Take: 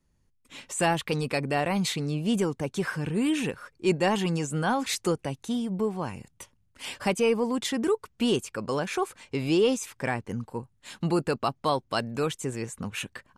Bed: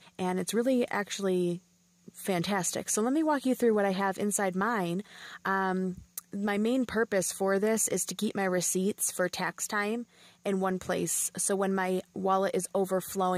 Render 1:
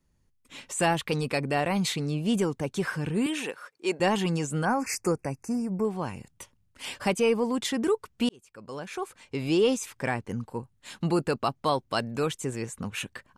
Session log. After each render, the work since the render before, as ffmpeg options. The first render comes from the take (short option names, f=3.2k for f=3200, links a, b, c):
-filter_complex "[0:a]asettb=1/sr,asplit=3[a][b][c];[a]atrim=end=3.264[d];[b]atrim=start=3.26:end=4,asetpts=PTS-STARTPTS,afade=t=in:d=0.004:c=qsin,afade=t=out:st=0.736:d=0.004:c=qsin,highpass=410[e];[c]atrim=start=3.996[f];[d][e]acrossfade=d=0.004:c1=hsin:c2=qsin[g];[g][f]acrossfade=d=0.004:c1=qsin:c2=hsin,asettb=1/sr,asplit=3[h][i][j];[h]atrim=end=4.654[k];[i]atrim=start=4.65:end=5.85,asetpts=PTS-STARTPTS,afade=t=in:d=0.004:c=qsin,afade=t=out:st=1.196:d=0.004:c=qsin,asuperstop=centerf=3500:order=12:qfactor=1.8[l];[j]atrim=start=5.846[m];[k][l]acrossfade=d=0.004:c1=hsin:c2=qsin[n];[n][m]acrossfade=d=0.004:c1=qsin:c2=hsin,asplit=2[o][p];[o]atrim=end=8.29,asetpts=PTS-STARTPTS,afade=t=out:st=8.286:d=0.004:c=hsin[q];[p]atrim=start=8.29,asetpts=PTS-STARTPTS,afade=t=in:d=1.37[r];[q][r]concat=n=2:v=0:a=1"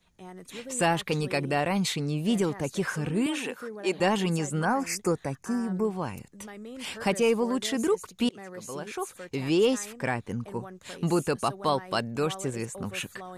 -filter_complex "[1:a]volume=-14dB[a];[0:a][a]amix=inputs=2:normalize=0"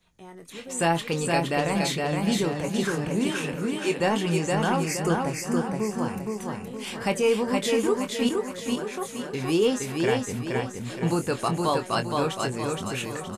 -filter_complex "[0:a]asplit=2[a][b];[b]adelay=24,volume=-8.5dB[c];[a][c]amix=inputs=2:normalize=0,aecho=1:1:468|936|1404|1872|2340|2808:0.708|0.311|0.137|0.0603|0.0265|0.0117"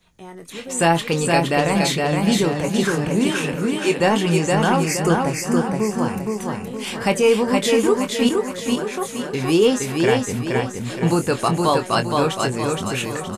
-af "volume=6.5dB"